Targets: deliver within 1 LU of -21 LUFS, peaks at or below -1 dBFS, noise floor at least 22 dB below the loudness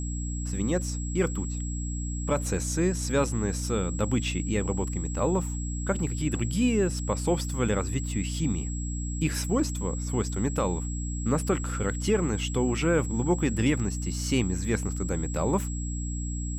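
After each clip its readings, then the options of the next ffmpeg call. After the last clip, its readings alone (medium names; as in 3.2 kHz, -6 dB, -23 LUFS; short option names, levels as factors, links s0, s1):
hum 60 Hz; highest harmonic 300 Hz; hum level -29 dBFS; steady tone 7.7 kHz; tone level -39 dBFS; loudness -28.5 LUFS; peak level -12.5 dBFS; loudness target -21.0 LUFS
-> -af "bandreject=f=60:t=h:w=4,bandreject=f=120:t=h:w=4,bandreject=f=180:t=h:w=4,bandreject=f=240:t=h:w=4,bandreject=f=300:t=h:w=4"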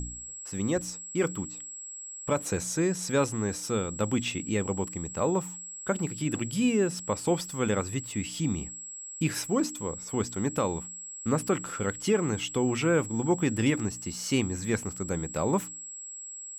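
hum not found; steady tone 7.7 kHz; tone level -39 dBFS
-> -af "bandreject=f=7700:w=30"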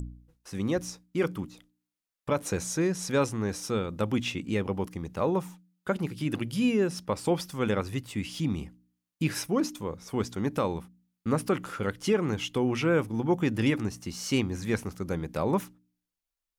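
steady tone not found; loudness -30.0 LUFS; peak level -14.5 dBFS; loudness target -21.0 LUFS
-> -af "volume=2.82"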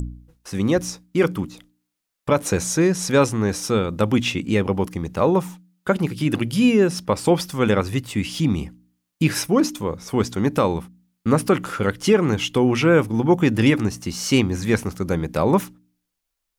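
loudness -21.0 LUFS; peak level -5.5 dBFS; noise floor -80 dBFS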